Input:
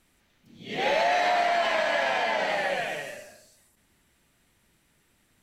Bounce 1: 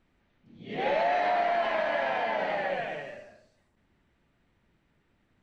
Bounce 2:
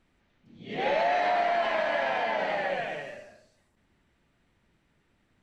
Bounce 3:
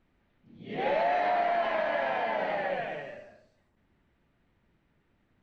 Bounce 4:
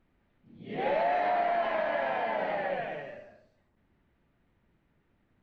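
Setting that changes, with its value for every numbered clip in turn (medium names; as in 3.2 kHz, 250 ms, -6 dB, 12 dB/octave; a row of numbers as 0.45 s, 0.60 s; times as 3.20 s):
tape spacing loss, at 10 kHz: 28 dB, 20 dB, 37 dB, 46 dB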